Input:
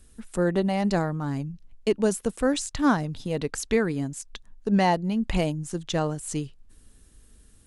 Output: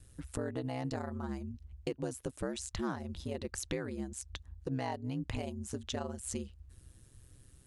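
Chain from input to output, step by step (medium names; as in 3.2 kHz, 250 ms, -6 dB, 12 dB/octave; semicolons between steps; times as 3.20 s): compression 4:1, threshold -31 dBFS, peak gain reduction 12.5 dB; ring modulator 65 Hz; trim -1.5 dB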